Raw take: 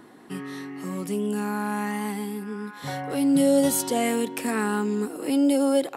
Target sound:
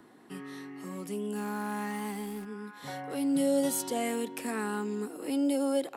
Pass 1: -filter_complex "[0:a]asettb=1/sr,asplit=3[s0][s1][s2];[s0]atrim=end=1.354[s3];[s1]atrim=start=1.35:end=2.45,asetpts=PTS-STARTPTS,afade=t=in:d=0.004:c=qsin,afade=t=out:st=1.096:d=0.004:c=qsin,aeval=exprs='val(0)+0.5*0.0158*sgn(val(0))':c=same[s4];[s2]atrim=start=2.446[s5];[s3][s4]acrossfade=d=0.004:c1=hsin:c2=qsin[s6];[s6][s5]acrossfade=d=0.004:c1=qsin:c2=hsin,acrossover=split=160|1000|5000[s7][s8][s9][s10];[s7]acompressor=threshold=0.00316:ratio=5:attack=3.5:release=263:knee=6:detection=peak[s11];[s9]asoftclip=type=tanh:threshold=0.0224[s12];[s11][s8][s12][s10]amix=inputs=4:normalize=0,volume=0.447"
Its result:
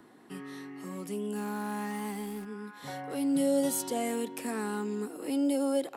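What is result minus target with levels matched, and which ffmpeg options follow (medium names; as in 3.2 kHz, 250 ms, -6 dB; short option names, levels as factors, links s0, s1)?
saturation: distortion +14 dB
-filter_complex "[0:a]asettb=1/sr,asplit=3[s0][s1][s2];[s0]atrim=end=1.354[s3];[s1]atrim=start=1.35:end=2.45,asetpts=PTS-STARTPTS,afade=t=in:d=0.004:c=qsin,afade=t=out:st=1.096:d=0.004:c=qsin,aeval=exprs='val(0)+0.5*0.0158*sgn(val(0))':c=same[s4];[s2]atrim=start=2.446[s5];[s3][s4]acrossfade=d=0.004:c1=hsin:c2=qsin[s6];[s6][s5]acrossfade=d=0.004:c1=qsin:c2=hsin,acrossover=split=160|1000|5000[s7][s8][s9][s10];[s7]acompressor=threshold=0.00316:ratio=5:attack=3.5:release=263:knee=6:detection=peak[s11];[s9]asoftclip=type=tanh:threshold=0.075[s12];[s11][s8][s12][s10]amix=inputs=4:normalize=0,volume=0.447"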